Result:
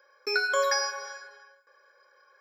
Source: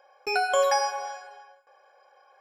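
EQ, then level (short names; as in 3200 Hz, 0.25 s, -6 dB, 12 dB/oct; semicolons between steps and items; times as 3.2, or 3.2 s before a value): HPF 270 Hz 24 dB/oct; fixed phaser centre 2800 Hz, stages 6; +3.5 dB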